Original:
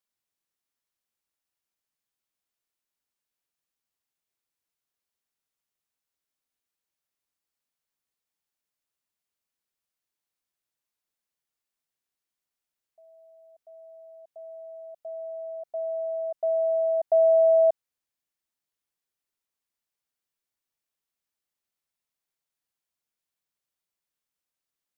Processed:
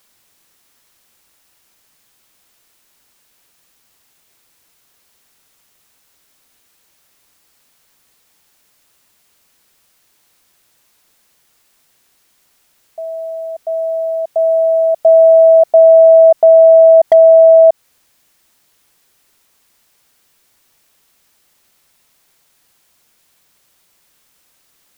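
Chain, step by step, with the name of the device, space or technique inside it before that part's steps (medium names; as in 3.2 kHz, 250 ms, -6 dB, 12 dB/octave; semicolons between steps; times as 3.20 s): loud club master (compression 2:1, threshold -25 dBFS, peak gain reduction 4.5 dB; hard clipper -19 dBFS, distortion -38 dB; loudness maximiser +31 dB); trim -1 dB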